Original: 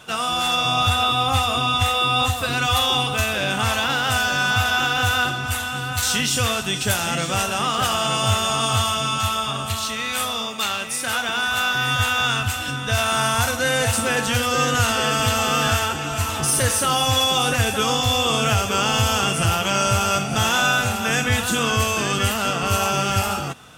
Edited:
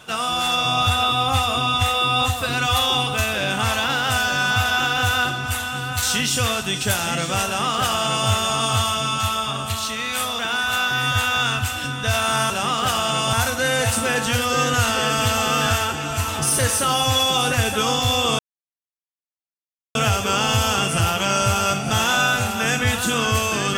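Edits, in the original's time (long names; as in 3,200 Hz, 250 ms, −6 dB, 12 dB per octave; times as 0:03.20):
0:07.46–0:08.29: duplicate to 0:13.34
0:10.39–0:11.23: remove
0:18.40: splice in silence 1.56 s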